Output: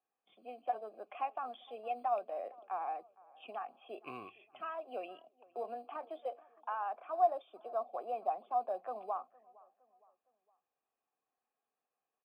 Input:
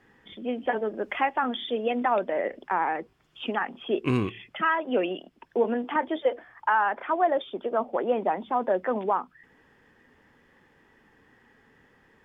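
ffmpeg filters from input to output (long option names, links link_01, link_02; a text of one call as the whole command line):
ffmpeg -i in.wav -filter_complex "[0:a]agate=range=-13dB:threshold=-50dB:ratio=16:detection=peak,asplit=3[link_01][link_02][link_03];[link_01]bandpass=frequency=730:width_type=q:width=8,volume=0dB[link_04];[link_02]bandpass=frequency=1090:width_type=q:width=8,volume=-6dB[link_05];[link_03]bandpass=frequency=2440:width_type=q:width=8,volume=-9dB[link_06];[link_04][link_05][link_06]amix=inputs=3:normalize=0,acrossover=split=250[link_07][link_08];[link_07]acrusher=samples=10:mix=1:aa=0.000001[link_09];[link_09][link_08]amix=inputs=2:normalize=0,asplit=2[link_10][link_11];[link_11]adelay=462,lowpass=frequency=1800:poles=1,volume=-23dB,asplit=2[link_12][link_13];[link_13]adelay=462,lowpass=frequency=1800:poles=1,volume=0.47,asplit=2[link_14][link_15];[link_15]adelay=462,lowpass=frequency=1800:poles=1,volume=0.47[link_16];[link_10][link_12][link_14][link_16]amix=inputs=4:normalize=0,volume=-4dB" out.wav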